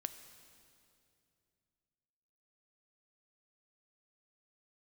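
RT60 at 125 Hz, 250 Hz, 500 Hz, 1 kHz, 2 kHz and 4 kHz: 3.4, 3.0, 2.8, 2.4, 2.3, 2.3 seconds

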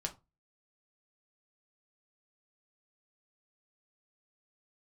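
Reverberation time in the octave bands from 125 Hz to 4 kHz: 0.40, 0.30, 0.25, 0.25, 0.20, 0.15 seconds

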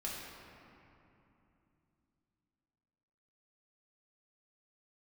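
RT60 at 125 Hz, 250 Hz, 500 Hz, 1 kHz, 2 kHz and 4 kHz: 4.0, 4.0, 3.0, 2.9, 2.5, 1.6 seconds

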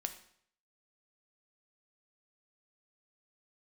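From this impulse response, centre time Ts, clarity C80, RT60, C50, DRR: 9 ms, 14.0 dB, 0.60 s, 11.0 dB, 7.0 dB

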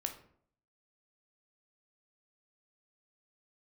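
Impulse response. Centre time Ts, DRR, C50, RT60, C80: 13 ms, 5.0 dB, 10.5 dB, 0.60 s, 14.5 dB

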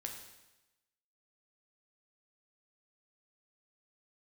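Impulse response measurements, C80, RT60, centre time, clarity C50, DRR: 7.5 dB, 1.0 s, 32 ms, 5.5 dB, 2.0 dB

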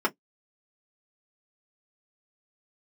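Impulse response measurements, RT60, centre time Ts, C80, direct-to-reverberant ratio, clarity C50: non-exponential decay, 7 ms, 52.5 dB, −1.0 dB, 32.5 dB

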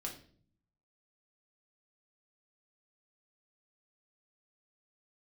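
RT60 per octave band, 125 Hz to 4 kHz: 1.0, 0.90, 0.60, 0.40, 0.45, 0.45 seconds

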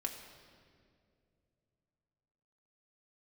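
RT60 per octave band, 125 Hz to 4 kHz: 3.8, 3.2, 2.8, 1.9, 1.8, 1.6 seconds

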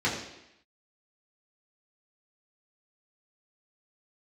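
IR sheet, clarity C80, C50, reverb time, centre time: 7.0 dB, 5.0 dB, 0.85 s, 39 ms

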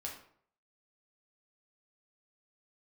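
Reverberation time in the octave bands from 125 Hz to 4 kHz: 0.70, 0.55, 0.60, 0.60, 0.50, 0.40 seconds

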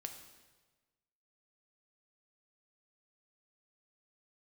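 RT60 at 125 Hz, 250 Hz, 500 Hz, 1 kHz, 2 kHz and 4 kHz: 1.5, 1.3, 1.4, 1.3, 1.2, 1.1 seconds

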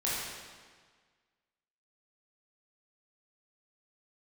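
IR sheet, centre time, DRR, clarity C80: 110 ms, −8.5 dB, 0.5 dB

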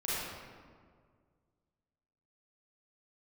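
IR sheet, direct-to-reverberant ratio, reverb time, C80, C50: −10.0 dB, 1.9 s, −2.0 dB, −5.5 dB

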